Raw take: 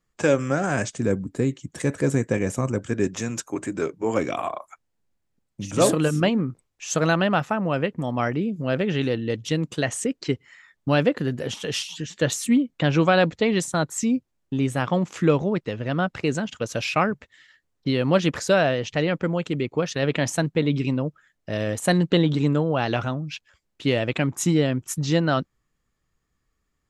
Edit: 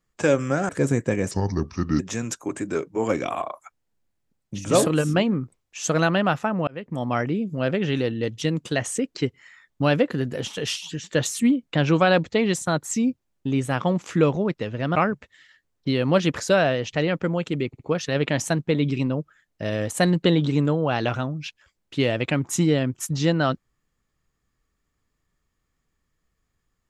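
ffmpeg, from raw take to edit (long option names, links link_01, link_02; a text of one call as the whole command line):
ffmpeg -i in.wav -filter_complex "[0:a]asplit=8[link_01][link_02][link_03][link_04][link_05][link_06][link_07][link_08];[link_01]atrim=end=0.692[link_09];[link_02]atrim=start=1.918:end=2.544[link_10];[link_03]atrim=start=2.54:end=3.06,asetpts=PTS-STARTPTS,asetrate=33516,aresample=44100[link_11];[link_04]atrim=start=3.056:end=7.74,asetpts=PTS-STARTPTS,afade=type=out:start_time=4.68:duration=0.004:curve=hsin[link_12];[link_05]atrim=start=7.74:end=16.022,asetpts=PTS-STARTPTS,afade=type=in:duration=0.33[link_13];[link_06]atrim=start=16.948:end=19.732[link_14];[link_07]atrim=start=19.668:end=19.732[link_15];[link_08]atrim=start=19.668[link_16];[link_09][link_10]acrossfade=duration=0.004:curve1=hsin:curve2=hsin[link_17];[link_17][link_11]acrossfade=duration=0.004:curve1=hsin:curve2=hsin[link_18];[link_12][link_13]concat=n=2:v=0:a=1[link_19];[link_18][link_19]acrossfade=duration=0.004:curve1=hsin:curve2=hsin[link_20];[link_20][link_14]acrossfade=duration=0.004:curve1=hsin:curve2=hsin[link_21];[link_21][link_15]acrossfade=duration=0.004:curve1=hsin:curve2=hsin[link_22];[link_22][link_16]acrossfade=duration=0.004:curve1=hsin:curve2=hsin" out.wav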